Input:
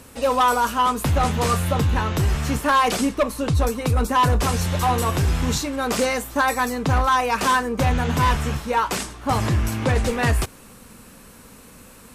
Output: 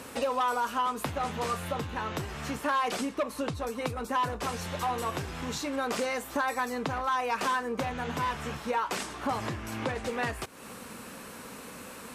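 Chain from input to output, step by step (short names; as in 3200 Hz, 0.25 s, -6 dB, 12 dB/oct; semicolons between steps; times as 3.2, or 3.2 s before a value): compressor, threshold -32 dBFS, peak gain reduction 15.5 dB; HPF 330 Hz 6 dB/oct; high shelf 4900 Hz -7.5 dB; gain +5.5 dB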